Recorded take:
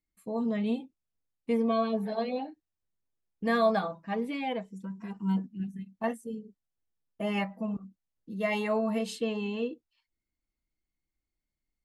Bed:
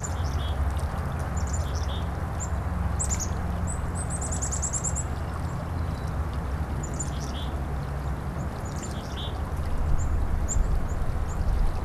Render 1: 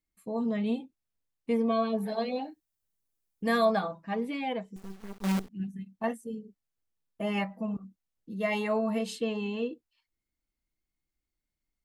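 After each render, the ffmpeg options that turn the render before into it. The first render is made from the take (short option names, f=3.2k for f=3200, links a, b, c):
-filter_complex "[0:a]asettb=1/sr,asplit=3[a][b][c];[a]atrim=end=1.984[d];[b]atrim=start=1.98:end=3.65,asetpts=PTS-STARTPTS,afade=t=in:d=0.004:c=qsin,afade=t=out:st=1.666:d=0.004:c=qsin,highshelf=f=6.3k:g=11.5[e];[c]atrim=start=3.646[f];[d][e]acrossfade=d=0.004:c1=hsin:c2=qsin[g];[g][f]acrossfade=d=0.004:c1=qsin:c2=hsin,asettb=1/sr,asplit=3[h][i][j];[h]atrim=end=4.764[k];[i]atrim=start=4.76:end=5.49,asetpts=PTS-STARTPTS,afade=t=in:d=0.004:c=qsin,afade=t=out:st=0.726:d=0.004:c=qsin,acrusher=bits=6:dc=4:mix=0:aa=0.000001[l];[j]atrim=start=5.486[m];[k][l]acrossfade=d=0.004:c1=hsin:c2=qsin[n];[n][m]acrossfade=d=0.004:c1=qsin:c2=hsin"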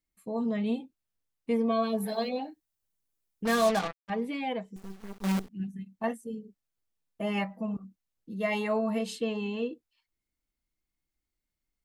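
-filter_complex "[0:a]asplit=3[a][b][c];[a]afade=t=out:st=1.82:d=0.02[d];[b]aemphasis=mode=production:type=50kf,afade=t=in:st=1.82:d=0.02,afade=t=out:st=2.28:d=0.02[e];[c]afade=t=in:st=2.28:d=0.02[f];[d][e][f]amix=inputs=3:normalize=0,asettb=1/sr,asplit=3[g][h][i];[g]atrim=end=3.454[j];[h]atrim=start=3.45:end=4.1,asetpts=PTS-STARTPTS,afade=t=in:d=0.004:c=qsin,afade=t=out:st=0.646:d=0.004:c=qsin,acrusher=bits=4:mix=0:aa=0.5[k];[i]atrim=start=4.096[l];[j][k]acrossfade=d=0.004:c1=hsin:c2=qsin[m];[m][l]acrossfade=d=0.004:c1=qsin:c2=hsin"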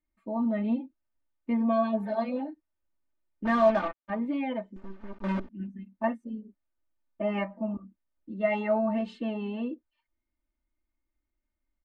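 -af "lowpass=1.8k,aecho=1:1:3.3:0.9"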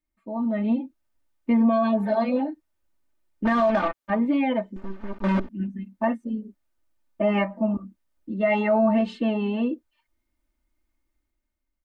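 -af "alimiter=limit=-21dB:level=0:latency=1:release=54,dynaudnorm=f=150:g=9:m=8dB"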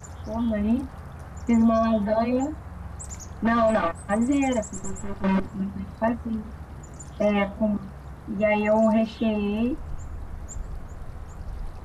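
-filter_complex "[1:a]volume=-10dB[a];[0:a][a]amix=inputs=2:normalize=0"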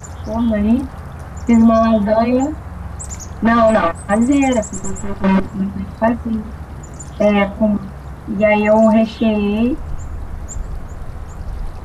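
-af "volume=9dB"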